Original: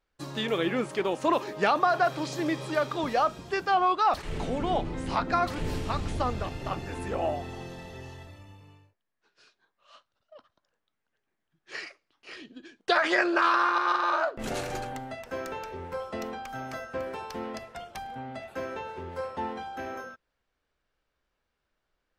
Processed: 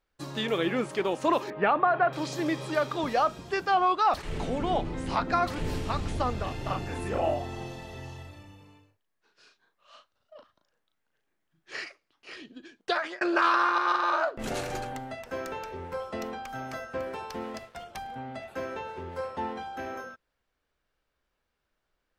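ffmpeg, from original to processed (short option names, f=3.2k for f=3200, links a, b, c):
-filter_complex "[0:a]asettb=1/sr,asplit=3[a][b][c];[a]atrim=end=1.504[d];[b]atrim=start=1.5:end=2.13,asetpts=PTS-STARTPTS,afade=t=in:d=0.004:c=qsin,afade=t=out:st=0.626:d=0.004:c=qsin,lowpass=f=2.6k:w=0.5412,lowpass=f=2.6k:w=1.3066[e];[c]atrim=start=2.126[f];[d][e]acrossfade=d=0.004:c1=hsin:c2=qsin[g];[g][f]acrossfade=d=0.004:c1=qsin:c2=hsin,asettb=1/sr,asplit=3[h][i][j];[h]atrim=end=6.434[k];[i]atrim=start=6.43:end=11.84,asetpts=PTS-STARTPTS,afade=t=in:d=0.004:c=qsin,afade=t=out:st=5.406:d=0.004:c=qsin,asplit=2[l][m];[m]adelay=37,volume=-4dB[n];[l][n]amix=inputs=2:normalize=0,atrim=end_sample=238581[o];[j]atrim=start=11.836[p];[k][o]acrossfade=d=0.004:c1=hsin:c2=qsin[q];[q][p]acrossfade=d=0.004:c1=qsin:c2=hsin,asettb=1/sr,asplit=3[r][s][t];[r]atrim=end=17.404[u];[s]atrim=start=17.4:end=17.84,asetpts=PTS-STARTPTS,afade=t=in:d=0.004:c=qsin,afade=t=out:st=0.436:d=0.004:c=qsin,aeval=exprs='sgn(val(0))*max(abs(val(0))-0.00211,0)':c=same[v];[t]atrim=start=17.836[w];[u][v]acrossfade=d=0.004:c1=hsin:c2=qsin[x];[x][w]acrossfade=d=0.004:c1=qsin:c2=hsin,asplit=2[y][z];[y]atrim=end=13.21,asetpts=PTS-STARTPTS,afade=t=out:st=12.56:d=0.65:c=qsin[aa];[z]atrim=start=13.21,asetpts=PTS-STARTPTS,afade=t=in:d=0.004:c=hsin[ab];[aa][ab]concat=n=2:v=0:a=1"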